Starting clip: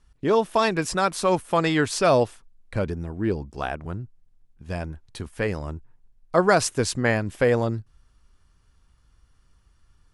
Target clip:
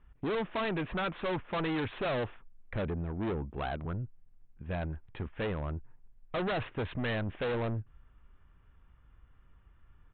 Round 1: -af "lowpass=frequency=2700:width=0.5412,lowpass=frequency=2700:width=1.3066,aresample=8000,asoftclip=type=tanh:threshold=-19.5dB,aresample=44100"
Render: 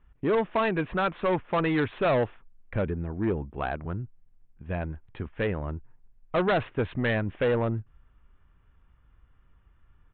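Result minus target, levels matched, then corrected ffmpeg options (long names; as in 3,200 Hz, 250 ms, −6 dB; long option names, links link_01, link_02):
soft clipping: distortion −7 dB
-af "lowpass=frequency=2700:width=0.5412,lowpass=frequency=2700:width=1.3066,aresample=8000,asoftclip=type=tanh:threshold=-30dB,aresample=44100"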